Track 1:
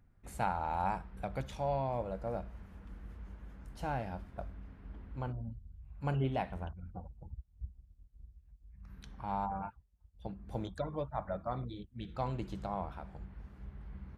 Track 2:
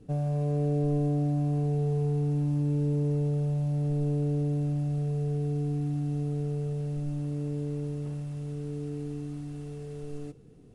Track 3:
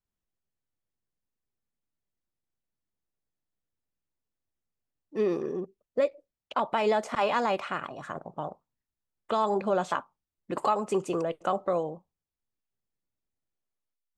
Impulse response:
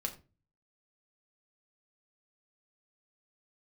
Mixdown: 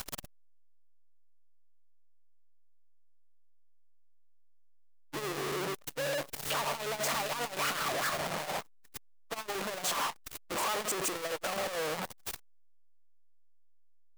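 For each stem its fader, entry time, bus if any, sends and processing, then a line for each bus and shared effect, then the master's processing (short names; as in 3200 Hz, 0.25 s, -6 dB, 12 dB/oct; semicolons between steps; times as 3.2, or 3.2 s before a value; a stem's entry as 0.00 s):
-10.5 dB, 0.00 s, no send, dry
-6.0 dB, 0.00 s, no send, HPF 110 Hz
+2.5 dB, 0.00 s, send -15.5 dB, infinite clipping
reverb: on, RT60 0.30 s, pre-delay 5 ms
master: low shelf 330 Hz -12 dB; core saturation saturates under 460 Hz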